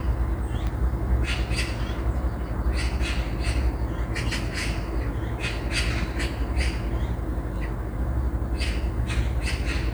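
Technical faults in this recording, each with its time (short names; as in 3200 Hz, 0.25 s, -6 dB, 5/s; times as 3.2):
0.67 pop -18 dBFS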